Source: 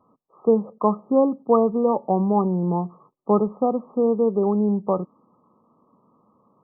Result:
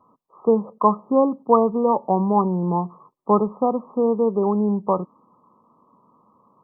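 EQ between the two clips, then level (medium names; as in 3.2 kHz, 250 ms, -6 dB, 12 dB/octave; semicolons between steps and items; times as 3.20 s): peaking EQ 1 kHz +8.5 dB 0.38 oct; 0.0 dB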